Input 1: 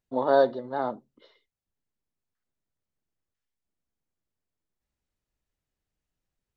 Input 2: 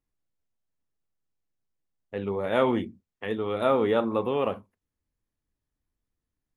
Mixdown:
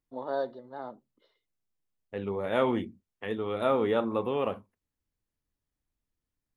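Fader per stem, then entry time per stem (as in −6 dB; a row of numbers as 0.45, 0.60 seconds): −11.0, −3.0 decibels; 0.00, 0.00 seconds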